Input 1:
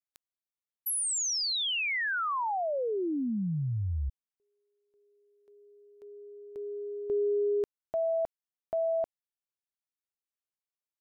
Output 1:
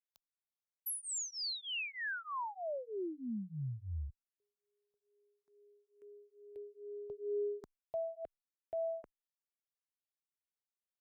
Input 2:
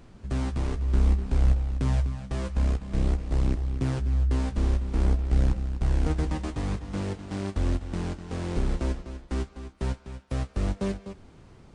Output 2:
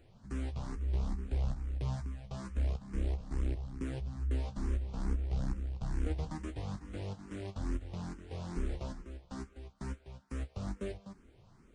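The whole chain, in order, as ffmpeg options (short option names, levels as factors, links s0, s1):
-filter_complex "[0:a]asplit=2[s0][s1];[s1]afreqshift=2.3[s2];[s0][s2]amix=inputs=2:normalize=1,volume=0.447"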